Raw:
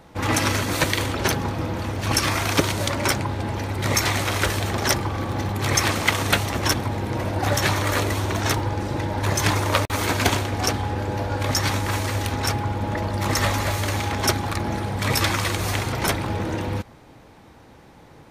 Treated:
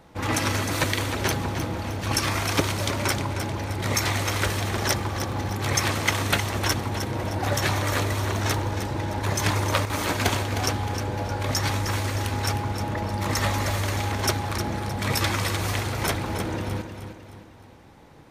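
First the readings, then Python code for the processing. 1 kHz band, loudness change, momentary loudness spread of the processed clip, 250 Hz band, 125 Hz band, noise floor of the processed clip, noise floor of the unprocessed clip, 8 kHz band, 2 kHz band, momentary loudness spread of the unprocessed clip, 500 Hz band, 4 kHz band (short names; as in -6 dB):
-3.0 dB, -2.5 dB, 5 LU, -3.0 dB, -2.0 dB, -48 dBFS, -48 dBFS, -3.0 dB, -3.0 dB, 6 LU, -3.0 dB, -3.0 dB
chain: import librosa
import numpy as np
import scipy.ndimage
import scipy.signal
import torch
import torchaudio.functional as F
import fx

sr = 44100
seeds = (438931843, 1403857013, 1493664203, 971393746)

y = fx.echo_feedback(x, sr, ms=309, feedback_pct=43, wet_db=-9)
y = y * librosa.db_to_amplitude(-3.5)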